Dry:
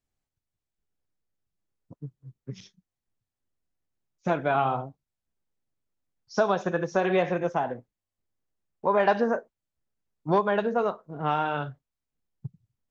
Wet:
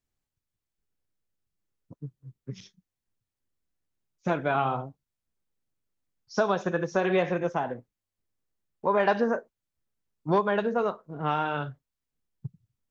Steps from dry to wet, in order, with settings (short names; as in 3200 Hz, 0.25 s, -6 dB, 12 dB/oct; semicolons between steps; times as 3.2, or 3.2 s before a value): bell 720 Hz -3 dB 0.6 oct